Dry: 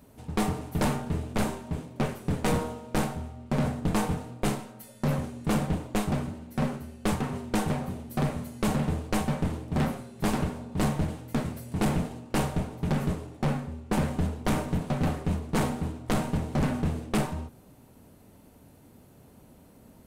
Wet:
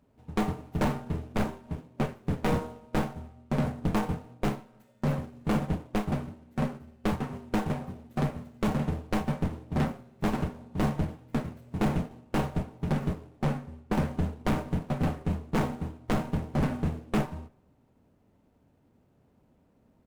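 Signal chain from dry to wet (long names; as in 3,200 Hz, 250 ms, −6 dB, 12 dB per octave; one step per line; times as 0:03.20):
running median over 9 samples
slap from a distant wall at 51 metres, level −27 dB
expander for the loud parts 1.5 to 1, over −44 dBFS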